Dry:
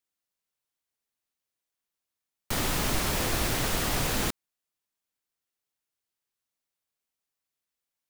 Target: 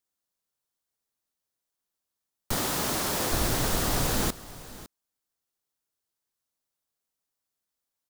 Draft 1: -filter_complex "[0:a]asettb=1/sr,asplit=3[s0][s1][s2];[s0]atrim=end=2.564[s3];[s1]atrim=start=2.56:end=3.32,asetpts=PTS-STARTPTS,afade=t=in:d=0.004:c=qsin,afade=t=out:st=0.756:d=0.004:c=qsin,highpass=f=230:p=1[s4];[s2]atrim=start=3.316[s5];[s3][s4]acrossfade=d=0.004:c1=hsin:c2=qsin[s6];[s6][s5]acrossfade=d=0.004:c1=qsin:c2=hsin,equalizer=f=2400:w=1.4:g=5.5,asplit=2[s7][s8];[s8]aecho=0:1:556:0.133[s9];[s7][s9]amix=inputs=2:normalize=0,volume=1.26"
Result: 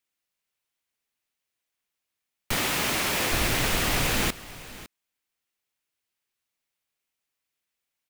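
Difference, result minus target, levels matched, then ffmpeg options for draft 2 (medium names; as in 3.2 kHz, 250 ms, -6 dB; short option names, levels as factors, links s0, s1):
2 kHz band +5.5 dB
-filter_complex "[0:a]asettb=1/sr,asplit=3[s0][s1][s2];[s0]atrim=end=2.564[s3];[s1]atrim=start=2.56:end=3.32,asetpts=PTS-STARTPTS,afade=t=in:d=0.004:c=qsin,afade=t=out:st=0.756:d=0.004:c=qsin,highpass=f=230:p=1[s4];[s2]atrim=start=3.316[s5];[s3][s4]acrossfade=d=0.004:c1=hsin:c2=qsin[s6];[s6][s5]acrossfade=d=0.004:c1=qsin:c2=hsin,equalizer=f=2400:w=1.4:g=-6,asplit=2[s7][s8];[s8]aecho=0:1:556:0.133[s9];[s7][s9]amix=inputs=2:normalize=0,volume=1.26"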